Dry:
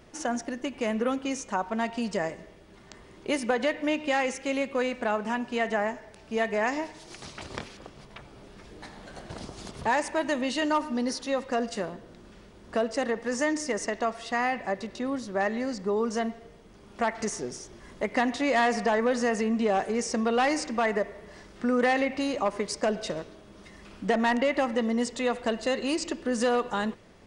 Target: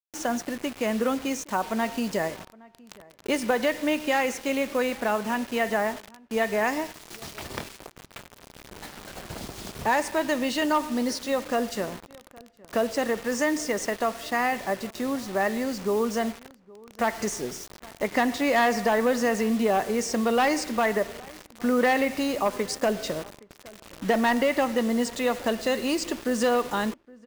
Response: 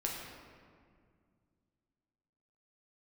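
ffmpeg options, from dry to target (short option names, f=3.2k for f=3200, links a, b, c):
-filter_complex "[0:a]acrusher=bits=6:mix=0:aa=0.000001,asplit=2[a][b];[b]adelay=816.3,volume=-23dB,highshelf=f=4k:g=-18.4[c];[a][c]amix=inputs=2:normalize=0,volume=2dB"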